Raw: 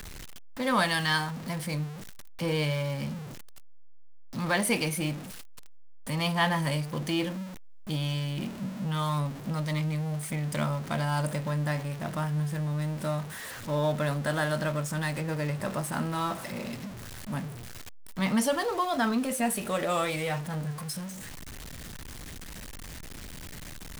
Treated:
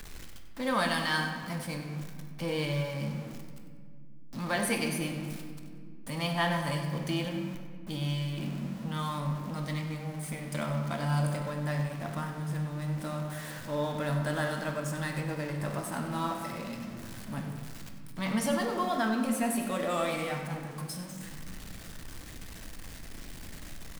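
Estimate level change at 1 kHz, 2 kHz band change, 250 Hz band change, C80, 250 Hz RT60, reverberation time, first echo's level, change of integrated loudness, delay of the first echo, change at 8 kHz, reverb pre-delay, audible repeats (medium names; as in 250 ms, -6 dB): -2.5 dB, -2.5 dB, -2.0 dB, 6.0 dB, 3.8 s, 2.1 s, -12.0 dB, -3.0 dB, 95 ms, -3.5 dB, 3 ms, 1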